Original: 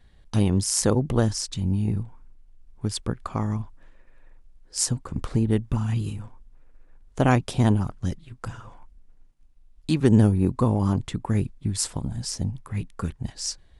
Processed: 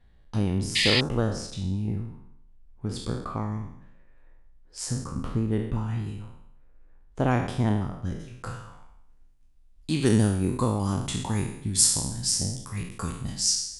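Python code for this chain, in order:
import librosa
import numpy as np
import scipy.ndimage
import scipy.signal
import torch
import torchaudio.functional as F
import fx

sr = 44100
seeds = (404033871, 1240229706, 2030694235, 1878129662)

y = fx.spec_trails(x, sr, decay_s=0.75)
y = fx.high_shelf(y, sr, hz=3600.0, db=fx.steps((0.0, -9.5), (8.19, 3.0), (10.01, 12.0)))
y = fx.spec_paint(y, sr, seeds[0], shape='noise', start_s=0.75, length_s=0.26, low_hz=1700.0, high_hz=5100.0, level_db=-18.0)
y = F.gain(torch.from_numpy(y), -5.0).numpy()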